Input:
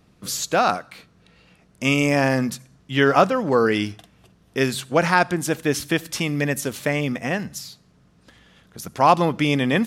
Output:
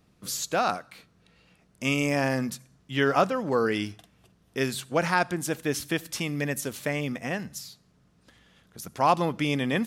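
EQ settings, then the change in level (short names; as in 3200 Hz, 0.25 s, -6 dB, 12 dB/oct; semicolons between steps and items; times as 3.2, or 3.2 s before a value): high shelf 7500 Hz +4 dB; -6.5 dB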